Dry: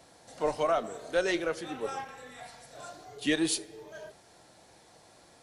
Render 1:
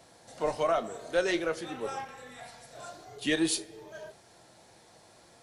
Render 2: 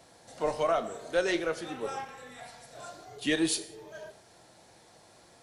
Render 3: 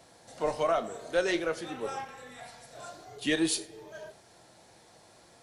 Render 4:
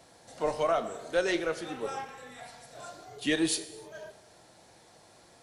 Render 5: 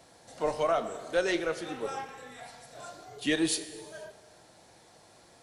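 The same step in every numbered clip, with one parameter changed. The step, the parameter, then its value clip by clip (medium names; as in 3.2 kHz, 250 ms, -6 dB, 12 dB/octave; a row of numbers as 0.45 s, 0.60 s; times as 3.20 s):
gated-style reverb, gate: 80 ms, 210 ms, 130 ms, 340 ms, 530 ms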